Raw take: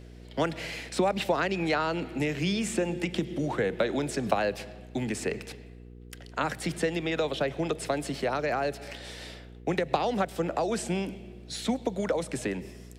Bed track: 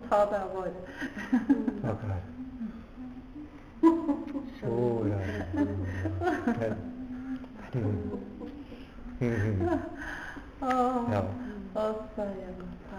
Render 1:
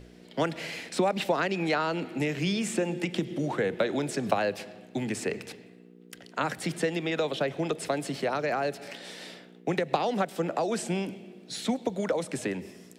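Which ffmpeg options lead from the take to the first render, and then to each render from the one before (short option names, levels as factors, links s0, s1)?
-af "bandreject=f=60:t=h:w=4,bandreject=f=120:t=h:w=4"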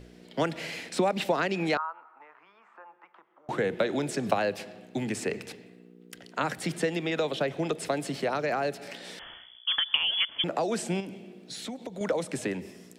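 -filter_complex "[0:a]asettb=1/sr,asplit=3[s0][s1][s2];[s0]atrim=end=1.774[s3];[s1]atrim=start=1.77:end=3.49,asetpts=PTS-STARTPTS,afade=t=in:d=0.004:c=qsin,afade=t=out:st=1.716:d=0.004:c=qsin,asuperpass=centerf=1100:order=4:qfactor=2.6[s4];[s2]atrim=start=3.486[s5];[s3][s4]acrossfade=d=0.004:c1=hsin:c2=qsin[s6];[s6][s5]acrossfade=d=0.004:c1=qsin:c2=hsin,asettb=1/sr,asplit=3[s7][s8][s9];[s7]atrim=end=9.194[s10];[s8]atrim=start=9.19:end=10.44,asetpts=PTS-STARTPTS,afade=t=in:d=0.004:c=qsin,afade=t=out:st=1.246:d=0.004:c=qsin,lowpass=f=3100:t=q:w=0.5098,lowpass=f=3100:t=q:w=0.6013,lowpass=f=3100:t=q:w=0.9,lowpass=f=3100:t=q:w=2.563,afreqshift=-3600[s11];[s9]atrim=start=10.436[s12];[s10][s11]acrossfade=d=0.004:c1=hsin:c2=qsin[s13];[s13][s12]acrossfade=d=0.004:c1=qsin:c2=hsin,asettb=1/sr,asplit=3[s14][s15][s16];[s14]atrim=end=11.004[s17];[s15]atrim=start=11:end=12.01,asetpts=PTS-STARTPTS,afade=t=in:d=0.004:c=qsin,afade=t=out:st=1.006:d=0.004:c=qsin,acompressor=threshold=0.0158:ratio=3:attack=3.2:release=140:knee=1:detection=peak[s18];[s16]atrim=start=12.006[s19];[s17][s18]acrossfade=d=0.004:c1=hsin:c2=qsin[s20];[s20][s19]acrossfade=d=0.004:c1=qsin:c2=hsin"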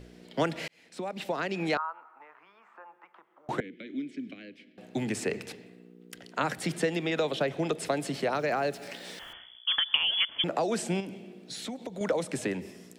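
-filter_complex "[0:a]asettb=1/sr,asplit=3[s0][s1][s2];[s0]atrim=end=3.604[s3];[s1]atrim=start=3.6:end=4.78,asetpts=PTS-STARTPTS,afade=t=in:d=0.004:c=qsin,afade=t=out:st=1.176:d=0.004:c=qsin,asplit=3[s4][s5][s6];[s4]bandpass=f=270:t=q:w=8,volume=1[s7];[s5]bandpass=f=2290:t=q:w=8,volume=0.501[s8];[s6]bandpass=f=3010:t=q:w=8,volume=0.355[s9];[s7][s8][s9]amix=inputs=3:normalize=0[s10];[s2]atrim=start=4.776[s11];[s3][s10]acrossfade=d=0.004:c1=hsin:c2=qsin[s12];[s12][s11]acrossfade=d=0.004:c1=qsin:c2=hsin,asettb=1/sr,asplit=3[s13][s14][s15];[s13]atrim=end=8.334[s16];[s14]atrim=start=8.33:end=9.33,asetpts=PTS-STARTPTS,afade=t=in:d=0.004:c=qsin,afade=t=out:st=0.996:d=0.004:c=qsin,aeval=exprs='val(0)*gte(abs(val(0)),0.00251)':c=same[s17];[s15]atrim=start=9.326[s18];[s16][s17]acrossfade=d=0.004:c1=hsin:c2=qsin[s19];[s19][s18]acrossfade=d=0.004:c1=qsin:c2=hsin,asplit=2[s20][s21];[s20]atrim=end=0.68,asetpts=PTS-STARTPTS,afade=t=out:st=0.676:d=0.004:c=hsin[s22];[s21]atrim=start=0.68,asetpts=PTS-STARTPTS,afade=t=in:d=1.22[s23];[s22][s23]concat=n=2:v=0:a=1"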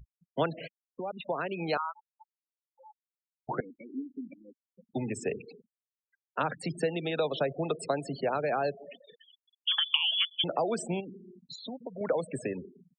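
-af "afftfilt=real='re*gte(hypot(re,im),0.0251)':imag='im*gte(hypot(re,im),0.0251)':win_size=1024:overlap=0.75,equalizer=f=200:t=o:w=0.33:g=-5,equalizer=f=315:t=o:w=0.33:g=-5,equalizer=f=2000:t=o:w=0.33:g=-10"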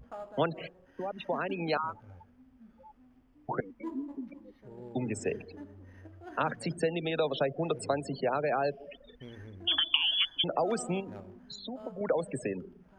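-filter_complex "[1:a]volume=0.119[s0];[0:a][s0]amix=inputs=2:normalize=0"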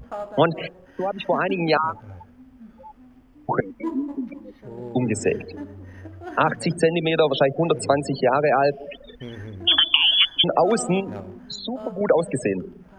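-af "volume=3.55,alimiter=limit=0.708:level=0:latency=1"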